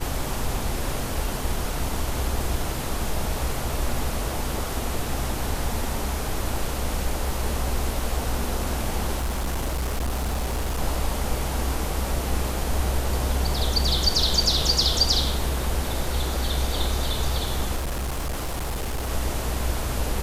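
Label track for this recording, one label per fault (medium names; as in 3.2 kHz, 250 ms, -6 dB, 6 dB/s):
9.180000	10.790000	clipped -22 dBFS
17.760000	19.100000	clipped -24 dBFS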